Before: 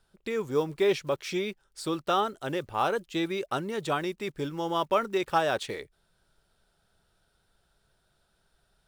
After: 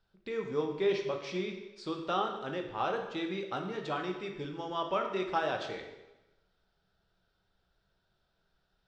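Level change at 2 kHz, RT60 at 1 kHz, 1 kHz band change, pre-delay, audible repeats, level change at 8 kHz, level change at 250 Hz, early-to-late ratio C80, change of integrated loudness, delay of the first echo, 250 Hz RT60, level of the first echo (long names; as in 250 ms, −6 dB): −5.0 dB, 1.0 s, −5.0 dB, 6 ms, no echo audible, below −10 dB, −5.0 dB, 8.5 dB, −5.0 dB, no echo audible, 1.0 s, no echo audible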